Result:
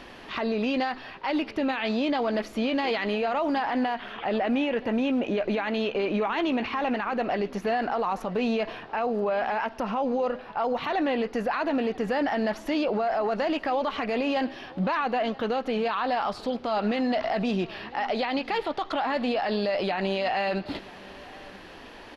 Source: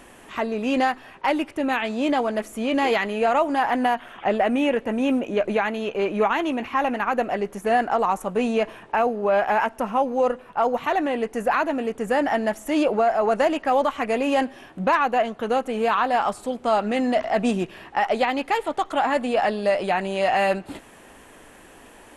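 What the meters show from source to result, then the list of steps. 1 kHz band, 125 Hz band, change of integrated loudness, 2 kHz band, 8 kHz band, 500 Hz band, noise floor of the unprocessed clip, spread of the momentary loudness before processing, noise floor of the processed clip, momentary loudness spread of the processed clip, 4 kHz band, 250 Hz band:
-6.0 dB, n/a, -4.5 dB, -4.5 dB, under -10 dB, -5.0 dB, -48 dBFS, 5 LU, -45 dBFS, 5 LU, -0.5 dB, -2.5 dB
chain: resonant high shelf 6200 Hz -11 dB, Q 3; limiter -21 dBFS, peak gain reduction 11.5 dB; on a send: echo 0.978 s -21.5 dB; on the sum: gain +2 dB

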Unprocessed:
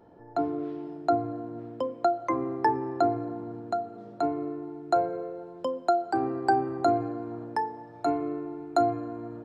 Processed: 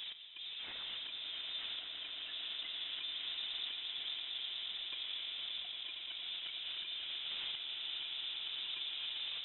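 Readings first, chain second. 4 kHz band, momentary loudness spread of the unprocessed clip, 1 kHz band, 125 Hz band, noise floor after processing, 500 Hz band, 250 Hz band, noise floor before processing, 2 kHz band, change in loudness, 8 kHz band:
+14.5 dB, 10 LU, -33.0 dB, under -30 dB, -47 dBFS, -37.5 dB, under -35 dB, -48 dBFS, -5.5 dB, -10.5 dB, n/a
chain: median-filter separation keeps percussive; in parallel at -2.5 dB: negative-ratio compressor -47 dBFS, ratio -0.5; on the sum: auto swell 0.789 s; tube stage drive 61 dB, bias 0.3; on a send: swelling echo 0.115 s, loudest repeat 8, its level -11.5 dB; on the sum: Schroeder reverb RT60 3.1 s, combs from 26 ms, DRR 7.5 dB; inverted band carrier 3800 Hz; gain +18 dB

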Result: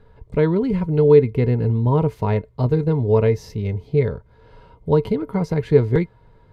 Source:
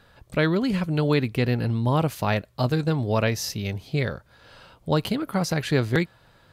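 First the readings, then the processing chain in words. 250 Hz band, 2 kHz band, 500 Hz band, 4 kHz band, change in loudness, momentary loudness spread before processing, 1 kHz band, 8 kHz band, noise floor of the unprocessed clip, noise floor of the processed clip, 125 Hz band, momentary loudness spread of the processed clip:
+3.0 dB, -6.5 dB, +9.0 dB, under -10 dB, +5.5 dB, 7 LU, 0.0 dB, under -10 dB, -58 dBFS, -53 dBFS, +5.0 dB, 11 LU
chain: tilt -3.5 dB/oct; small resonant body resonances 440/950/2100 Hz, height 16 dB, ringing for 95 ms; gain -5 dB

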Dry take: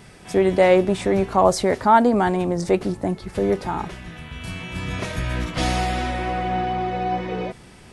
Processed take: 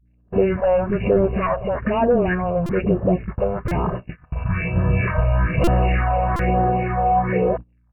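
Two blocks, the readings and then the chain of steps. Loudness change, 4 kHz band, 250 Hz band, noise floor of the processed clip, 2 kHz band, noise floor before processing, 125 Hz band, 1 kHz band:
+1.0 dB, -10.0 dB, +0.5 dB, -58 dBFS, +1.0 dB, -45 dBFS, +7.0 dB, -0.5 dB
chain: Wiener smoothing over 9 samples; low shelf 74 Hz -7.5 dB; comb 1.8 ms, depth 75%; pre-echo 64 ms -21 dB; sample leveller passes 3; compressor 16:1, threshold -13 dBFS, peak gain reduction 9.5 dB; hum 60 Hz, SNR 17 dB; phaser stages 4, 1.1 Hz, lowest notch 300–2300 Hz; dispersion highs, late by 58 ms, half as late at 340 Hz; gate -25 dBFS, range -25 dB; brick-wall FIR low-pass 2900 Hz; stuck buffer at 2.66/3.68/5.64/6.36, samples 128, times 10

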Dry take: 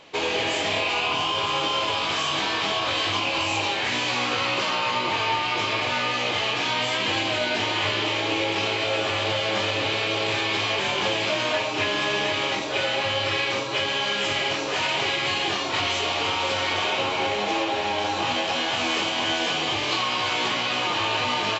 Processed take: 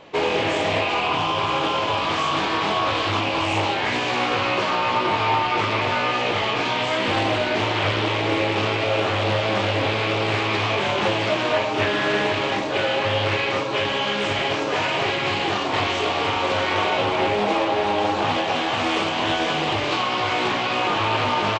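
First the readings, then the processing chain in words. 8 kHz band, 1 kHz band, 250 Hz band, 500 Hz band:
n/a, +4.5 dB, +5.5 dB, +5.0 dB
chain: high shelf 2200 Hz -11.5 dB; on a send: early reflections 19 ms -11 dB, 38 ms -11.5 dB; on the sum: Doppler distortion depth 0.3 ms; gain +6 dB

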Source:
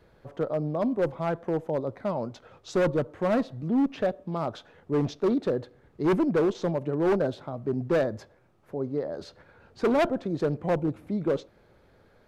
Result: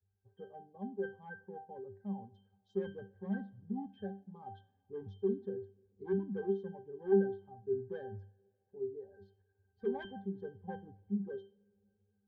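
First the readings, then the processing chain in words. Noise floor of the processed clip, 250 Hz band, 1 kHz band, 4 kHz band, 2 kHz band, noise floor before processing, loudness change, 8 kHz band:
-79 dBFS, -12.5 dB, -15.5 dB, under -15 dB, -14.0 dB, -61 dBFS, -11.5 dB, n/a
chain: per-bin expansion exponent 1.5; octave resonator G, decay 0.31 s; two-slope reverb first 0.57 s, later 2.9 s, from -18 dB, DRR 16.5 dB; gain +5.5 dB

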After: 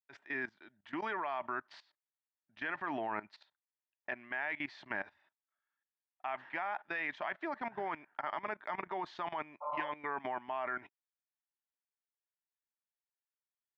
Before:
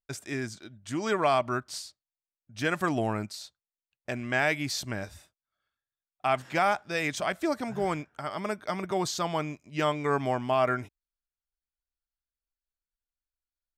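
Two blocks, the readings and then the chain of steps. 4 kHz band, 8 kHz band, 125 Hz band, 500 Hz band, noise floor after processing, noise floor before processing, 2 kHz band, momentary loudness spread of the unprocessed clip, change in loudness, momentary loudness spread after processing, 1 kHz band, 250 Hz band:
-16.5 dB, under -30 dB, -24.0 dB, -13.5 dB, under -85 dBFS, under -85 dBFS, -6.0 dB, 13 LU, -9.5 dB, 7 LU, -8.0 dB, -14.0 dB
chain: speaker cabinet 350–3100 Hz, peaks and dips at 490 Hz -8 dB, 920 Hz +9 dB, 1800 Hz +9 dB; level quantiser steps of 18 dB; spectral repair 9.64–9.87, 470–1400 Hz after; gain -1 dB

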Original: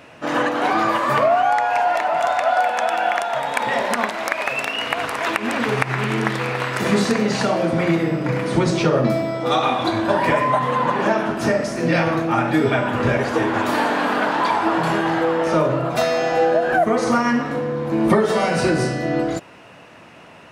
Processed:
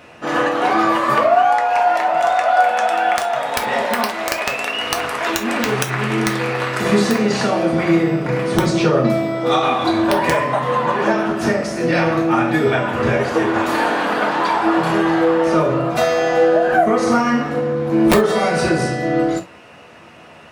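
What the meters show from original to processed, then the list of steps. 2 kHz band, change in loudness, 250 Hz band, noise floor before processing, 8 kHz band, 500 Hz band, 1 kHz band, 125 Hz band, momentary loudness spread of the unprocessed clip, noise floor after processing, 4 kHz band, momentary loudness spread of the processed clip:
+1.5 dB, +2.5 dB, +3.0 dB, -44 dBFS, +4.0 dB, +2.5 dB, +2.5 dB, +1.0 dB, 5 LU, -42 dBFS, +2.5 dB, 6 LU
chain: wrapped overs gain 6 dB; non-linear reverb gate 90 ms falling, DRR 3 dB

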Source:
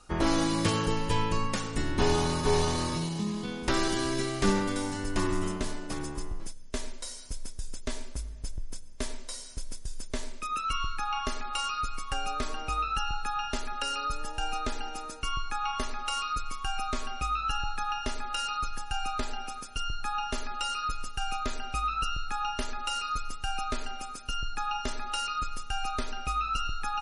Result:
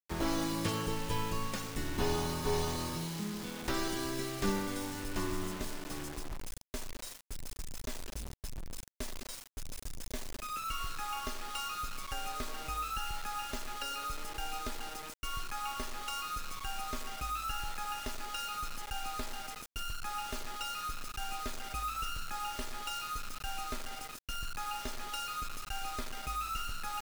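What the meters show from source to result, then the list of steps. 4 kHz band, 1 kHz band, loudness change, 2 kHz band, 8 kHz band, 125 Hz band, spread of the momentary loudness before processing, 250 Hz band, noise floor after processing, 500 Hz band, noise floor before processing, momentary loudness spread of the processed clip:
-5.5 dB, -7.0 dB, -6.0 dB, -6.0 dB, -3.5 dB, -7.0 dB, 12 LU, -7.0 dB, -49 dBFS, -7.0 dB, -41 dBFS, 10 LU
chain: requantised 6-bit, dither none; gain -7 dB

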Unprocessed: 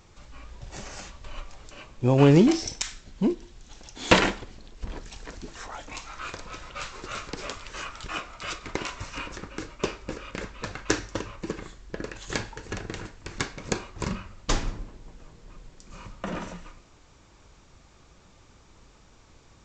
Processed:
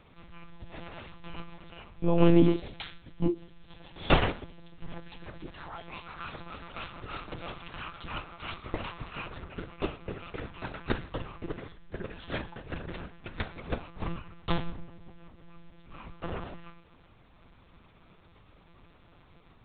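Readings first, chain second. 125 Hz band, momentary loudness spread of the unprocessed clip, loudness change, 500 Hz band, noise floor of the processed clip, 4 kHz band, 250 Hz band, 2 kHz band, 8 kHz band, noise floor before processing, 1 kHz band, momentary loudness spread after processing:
-4.5 dB, 22 LU, -5.0 dB, -4.5 dB, -59 dBFS, -7.0 dB, -4.0 dB, -6.5 dB, under -40 dB, -56 dBFS, -4.0 dB, 22 LU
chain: dynamic EQ 2000 Hz, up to -4 dB, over -48 dBFS, Q 1.8; monotone LPC vocoder at 8 kHz 170 Hz; gain -2.5 dB

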